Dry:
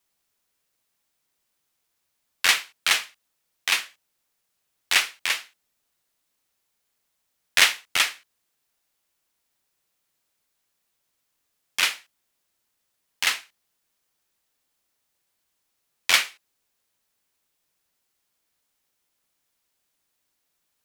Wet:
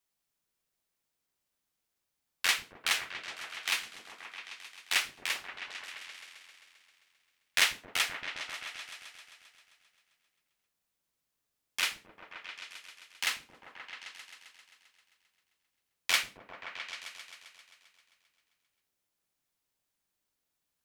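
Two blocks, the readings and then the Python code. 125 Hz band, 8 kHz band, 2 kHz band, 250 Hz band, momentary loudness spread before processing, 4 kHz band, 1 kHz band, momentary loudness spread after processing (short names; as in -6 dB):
n/a, -8.5 dB, -8.0 dB, -5.5 dB, 13 LU, -8.0 dB, -7.5 dB, 20 LU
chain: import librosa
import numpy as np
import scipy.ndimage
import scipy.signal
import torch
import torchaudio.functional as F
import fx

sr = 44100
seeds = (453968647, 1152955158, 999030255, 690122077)

y = fx.echo_opening(x, sr, ms=132, hz=200, octaves=1, feedback_pct=70, wet_db=0)
y = y * librosa.db_to_amplitude(-8.5)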